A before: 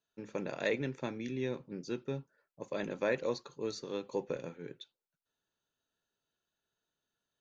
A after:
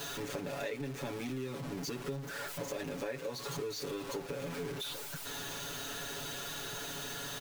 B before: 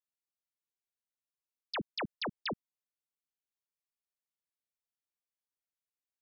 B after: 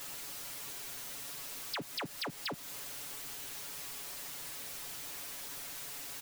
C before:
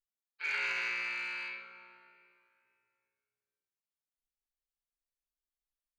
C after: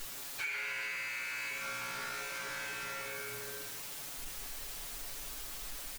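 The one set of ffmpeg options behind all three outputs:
-af "aeval=exprs='val(0)+0.5*0.0178*sgn(val(0))':c=same,aecho=1:1:7.1:0.96,acompressor=threshold=0.0178:ratio=6,volume=0.891"

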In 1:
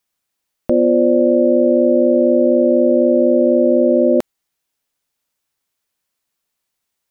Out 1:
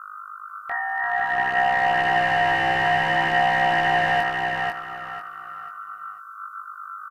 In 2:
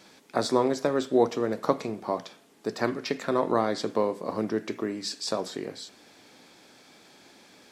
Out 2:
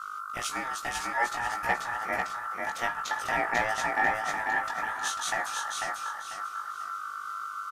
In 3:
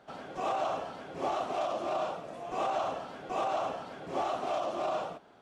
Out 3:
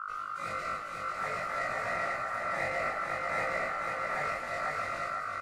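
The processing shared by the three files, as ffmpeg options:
-filter_complex "[0:a]highpass=f=390:w=0.5412,highpass=f=390:w=1.3066,aemphasis=mode=production:type=riaa,acrossover=split=590|3400[s0][s1][s2];[s0]dynaudnorm=f=200:g=13:m=6.31[s3];[s3][s1][s2]amix=inputs=3:normalize=0,asoftclip=type=tanh:threshold=0.794,aeval=exprs='val(0)+0.0447*(sin(2*PI*50*n/s)+sin(2*PI*2*50*n/s)/2+sin(2*PI*3*50*n/s)/3+sin(2*PI*4*50*n/s)/4+sin(2*PI*5*50*n/s)/5)':c=same,aeval=exprs='0.422*(abs(mod(val(0)/0.422+3,4)-2)-1)':c=same,aeval=exprs='val(0)*sin(2*PI*1300*n/s)':c=same,flanger=delay=16.5:depth=3.9:speed=0.56,aecho=1:1:494|988|1482|1976:0.668|0.187|0.0524|0.0147,aresample=32000,aresample=44100,volume=0.631"

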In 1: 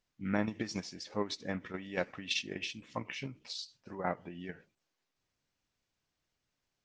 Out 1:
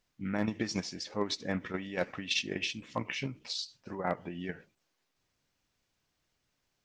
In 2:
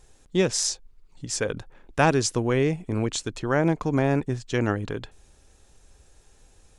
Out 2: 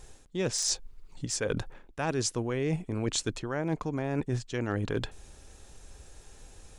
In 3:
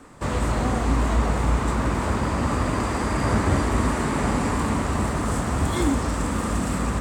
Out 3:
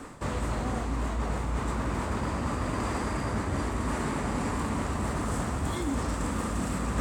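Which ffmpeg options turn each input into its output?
-af "areverse,acompressor=threshold=0.0282:ratio=20,areverse,asoftclip=type=hard:threshold=0.0708,volume=1.78"

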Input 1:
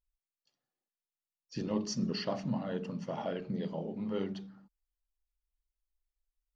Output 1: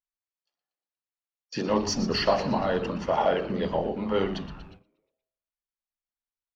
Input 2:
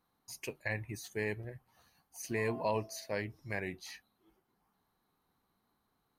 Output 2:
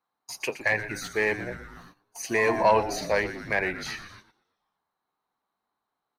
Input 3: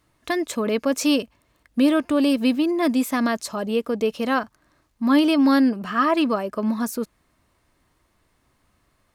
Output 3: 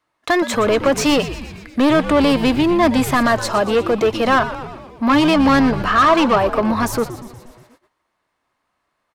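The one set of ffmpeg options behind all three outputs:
-filter_complex "[0:a]asplit=2[s0][s1];[s1]highpass=f=720:p=1,volume=11.2,asoftclip=type=tanh:threshold=0.422[s2];[s0][s2]amix=inputs=2:normalize=0,lowpass=f=3100:p=1,volume=0.501,acrossover=split=780|1000[s3][s4][s5];[s4]acontrast=74[s6];[s3][s6][s5]amix=inputs=3:normalize=0,asplit=8[s7][s8][s9][s10][s11][s12][s13][s14];[s8]adelay=119,afreqshift=-120,volume=0.237[s15];[s9]adelay=238,afreqshift=-240,volume=0.15[s16];[s10]adelay=357,afreqshift=-360,volume=0.0944[s17];[s11]adelay=476,afreqshift=-480,volume=0.0596[s18];[s12]adelay=595,afreqshift=-600,volume=0.0372[s19];[s13]adelay=714,afreqshift=-720,volume=0.0234[s20];[s14]adelay=833,afreqshift=-840,volume=0.0148[s21];[s7][s15][s16][s17][s18][s19][s20][s21]amix=inputs=8:normalize=0,agate=range=0.126:threshold=0.00398:ratio=16:detection=peak"

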